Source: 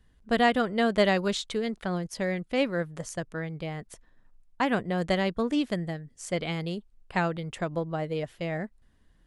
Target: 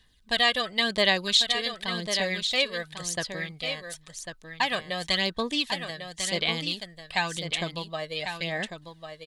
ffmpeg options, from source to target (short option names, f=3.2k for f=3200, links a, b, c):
-filter_complex "[0:a]asuperstop=centerf=1400:order=20:qfactor=7.6,equalizer=f=3.9k:w=2:g=9.5,aphaser=in_gain=1:out_gain=1:delay=1.8:decay=0.48:speed=0.93:type=sinusoidal,asplit=2[a][b];[b]alimiter=limit=-15dB:level=0:latency=1:release=291,volume=1dB[c];[a][c]amix=inputs=2:normalize=0,tiltshelf=f=970:g=-8,asplit=2[d][e];[e]aecho=0:1:1097:0.398[f];[d][f]amix=inputs=2:normalize=0,volume=-8dB"